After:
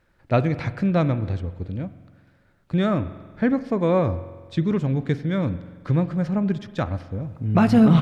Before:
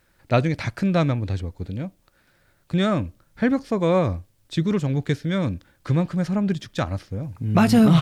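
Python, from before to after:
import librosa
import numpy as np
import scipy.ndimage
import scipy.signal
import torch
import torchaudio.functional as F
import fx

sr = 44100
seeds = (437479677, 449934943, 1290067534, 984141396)

y = fx.lowpass(x, sr, hz=2000.0, slope=6)
y = fx.rev_spring(y, sr, rt60_s=1.5, pass_ms=(45,), chirp_ms=80, drr_db=13.5)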